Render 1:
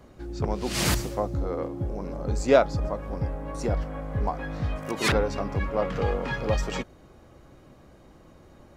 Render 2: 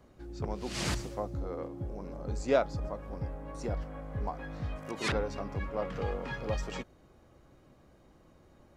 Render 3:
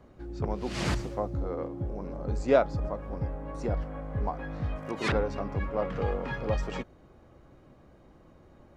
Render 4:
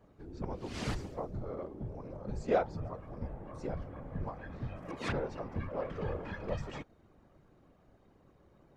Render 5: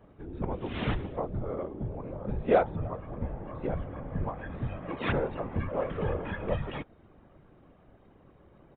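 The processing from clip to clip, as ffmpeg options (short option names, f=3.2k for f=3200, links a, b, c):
-filter_complex "[0:a]acrossover=split=9600[a][b];[b]acompressor=threshold=-60dB:ratio=4:attack=1:release=60[c];[a][c]amix=inputs=2:normalize=0,volume=-8dB"
-af "highshelf=f=3.9k:g=-10.5,volume=4.5dB"
-af "afftfilt=real='hypot(re,im)*cos(2*PI*random(0))':imag='hypot(re,im)*sin(2*PI*random(1))':win_size=512:overlap=0.75,volume=-1.5dB"
-af "aresample=8000,aresample=44100,volume=6dB"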